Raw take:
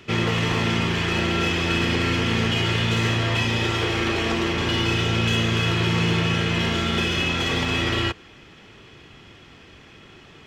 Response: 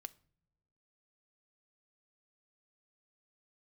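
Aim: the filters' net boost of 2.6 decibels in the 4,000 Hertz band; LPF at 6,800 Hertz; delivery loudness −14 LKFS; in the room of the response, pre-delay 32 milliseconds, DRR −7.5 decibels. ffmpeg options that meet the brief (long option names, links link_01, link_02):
-filter_complex "[0:a]lowpass=6800,equalizer=frequency=4000:width_type=o:gain=4,asplit=2[link_01][link_02];[1:a]atrim=start_sample=2205,adelay=32[link_03];[link_02][link_03]afir=irnorm=-1:irlink=0,volume=13dB[link_04];[link_01][link_04]amix=inputs=2:normalize=0,volume=-1.5dB"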